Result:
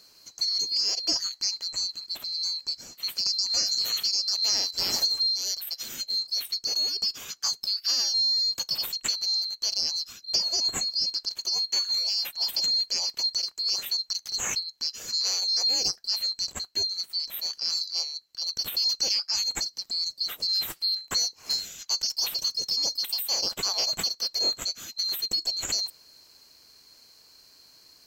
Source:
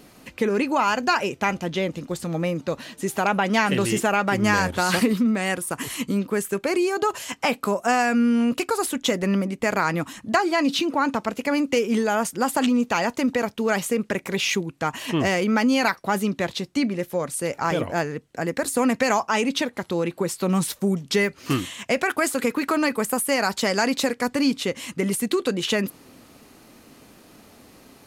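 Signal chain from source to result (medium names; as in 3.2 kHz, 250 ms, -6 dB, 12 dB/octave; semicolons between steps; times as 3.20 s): split-band scrambler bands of 4 kHz; trim -5.5 dB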